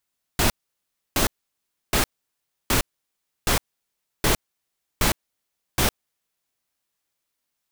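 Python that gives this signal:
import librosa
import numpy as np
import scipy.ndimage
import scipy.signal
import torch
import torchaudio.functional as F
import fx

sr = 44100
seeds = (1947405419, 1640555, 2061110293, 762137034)

y = fx.noise_burst(sr, seeds[0], colour='pink', on_s=0.11, off_s=0.66, bursts=8, level_db=-19.5)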